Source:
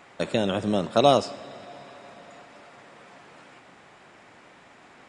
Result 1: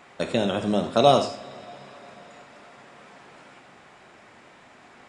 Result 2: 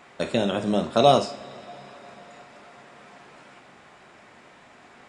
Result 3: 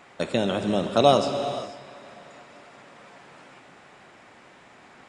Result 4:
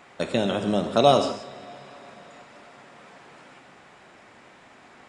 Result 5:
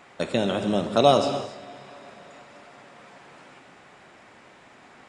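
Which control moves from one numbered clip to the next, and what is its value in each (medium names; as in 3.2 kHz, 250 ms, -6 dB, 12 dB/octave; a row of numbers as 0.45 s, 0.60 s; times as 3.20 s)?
gated-style reverb, gate: 120 ms, 80 ms, 520 ms, 200 ms, 310 ms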